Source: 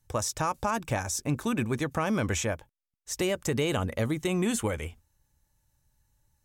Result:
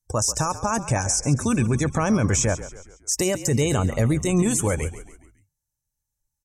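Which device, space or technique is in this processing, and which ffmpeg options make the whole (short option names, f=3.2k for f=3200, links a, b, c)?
over-bright horn tweeter: -filter_complex "[0:a]highshelf=f=4.5k:t=q:w=1.5:g=8,alimiter=limit=-20.5dB:level=0:latency=1:release=20,asettb=1/sr,asplit=3[a][b][c];[a]atrim=end=0.564[d];[b]atrim=start=0.56:end=2.1,asetpts=PTS-STARTPTS,afade=t=in:d=0.004:c=qsin,afade=t=out:st=1.536:d=0.004:c=qsin,lowpass=f=11k:w=0.5412,lowpass=f=11k:w=1.3066[e];[c]atrim=start=2.096[f];[d][e]acrossfade=d=0.004:c1=hsin:c2=qsin[g];[g][f]acrossfade=d=0.004:c1=qsin:c2=hsin,afftdn=nr=23:nf=-44,adynamicequalizer=threshold=0.00501:dfrequency=130:dqfactor=1.9:tfrequency=130:tqfactor=1.9:attack=5:release=100:ratio=0.375:range=3:mode=boostabove:tftype=bell,asplit=5[h][i][j][k][l];[i]adelay=138,afreqshift=-46,volume=-14dB[m];[j]adelay=276,afreqshift=-92,volume=-20.6dB[n];[k]adelay=414,afreqshift=-138,volume=-27.1dB[o];[l]adelay=552,afreqshift=-184,volume=-33.7dB[p];[h][m][n][o][p]amix=inputs=5:normalize=0,volume=7.5dB"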